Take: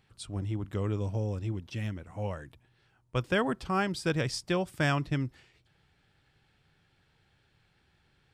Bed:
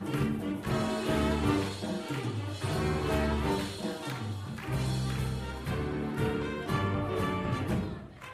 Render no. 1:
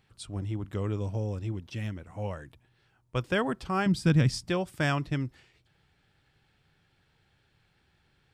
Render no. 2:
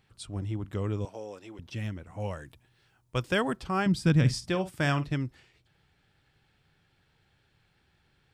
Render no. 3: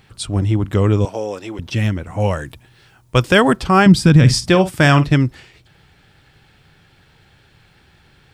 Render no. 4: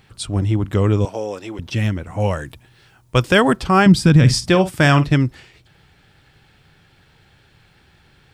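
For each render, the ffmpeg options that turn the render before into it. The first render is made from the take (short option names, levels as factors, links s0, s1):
-filter_complex "[0:a]asettb=1/sr,asplit=3[s0][s1][s2];[s0]atrim=end=3.864[s3];[s1]atrim=start=3.86:end=4.5,asetpts=PTS-STARTPTS,afade=t=in:d=0.004:c=qsin,afade=t=out:st=0.636:d=0.004:c=qsin,lowshelf=f=310:t=q:w=1.5:g=8.5[s4];[s2]atrim=start=4.496[s5];[s3][s4]acrossfade=d=0.004:c1=hsin:c2=qsin[s6];[s6][s5]acrossfade=d=0.004:c1=qsin:c2=hsin"
-filter_complex "[0:a]asettb=1/sr,asplit=3[s0][s1][s2];[s0]atrim=end=1.054[s3];[s1]atrim=start=1.05:end=1.59,asetpts=PTS-STARTPTS,afade=t=in:d=0.004:c=qsin,afade=t=out:st=0.536:d=0.004:c=qsin,highpass=460[s4];[s2]atrim=start=1.586[s5];[s3][s4]acrossfade=d=0.004:c1=hsin:c2=qsin[s6];[s6][s5]acrossfade=d=0.004:c1=qsin:c2=hsin,asettb=1/sr,asplit=3[s7][s8][s9];[s7]atrim=end=2.204[s10];[s8]atrim=start=2.2:end=3.57,asetpts=PTS-STARTPTS,afade=t=in:d=0.004:c=qsin,afade=t=out:st=1.366:d=0.004:c=qsin,highshelf=f=3900:g=7[s11];[s9]atrim=start=3.566[s12];[s10][s11]acrossfade=d=0.004:c1=hsin:c2=qsin[s13];[s13][s12]acrossfade=d=0.004:c1=qsin:c2=hsin,asettb=1/sr,asplit=3[s14][s15][s16];[s14]atrim=end=4.164[s17];[s15]atrim=start=4.16:end=5.13,asetpts=PTS-STARTPTS,afade=t=in:d=0.004:c=qsin,afade=t=out:st=0.966:d=0.004:c=qsin,asplit=2[s18][s19];[s19]adelay=49,volume=0.224[s20];[s18][s20]amix=inputs=2:normalize=0,atrim=end_sample=42777[s21];[s16]atrim=start=5.126[s22];[s17][s21]acrossfade=d=0.004:c1=hsin:c2=qsin[s23];[s23][s22]acrossfade=d=0.004:c1=qsin:c2=hsin"
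-af "acontrast=36,alimiter=level_in=3.55:limit=0.891:release=50:level=0:latency=1"
-af "volume=0.841"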